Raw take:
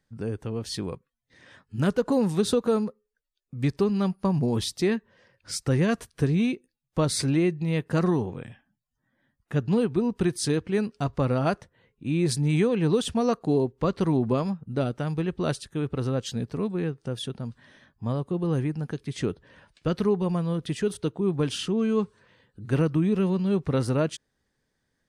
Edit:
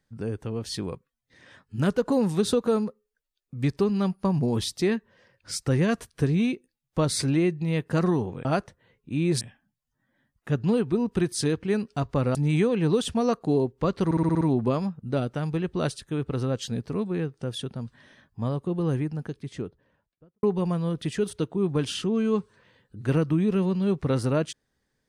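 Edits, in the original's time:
11.39–12.35 move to 8.45
14.05 stutter 0.06 s, 7 plays
18.48–20.07 studio fade out

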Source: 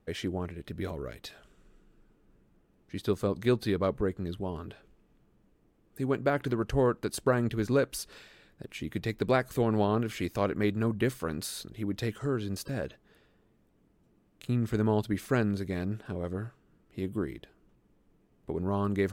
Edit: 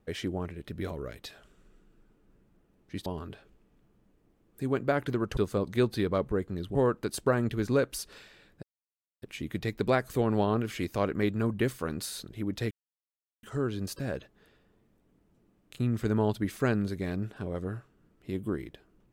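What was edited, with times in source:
3.06–4.44 move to 6.75
8.63 insert silence 0.59 s
12.12 insert silence 0.72 s

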